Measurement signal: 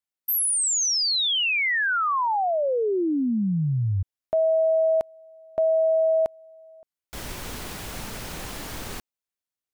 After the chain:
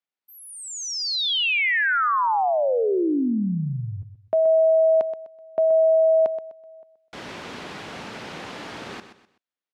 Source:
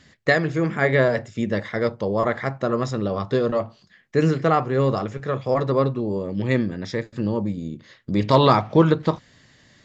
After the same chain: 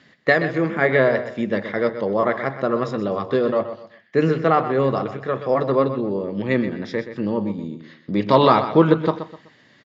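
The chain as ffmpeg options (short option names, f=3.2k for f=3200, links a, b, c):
-filter_complex "[0:a]highpass=180,lowpass=3.7k,asplit=2[a][b];[b]aecho=0:1:126|252|378:0.282|0.0874|0.0271[c];[a][c]amix=inputs=2:normalize=0,volume=2dB"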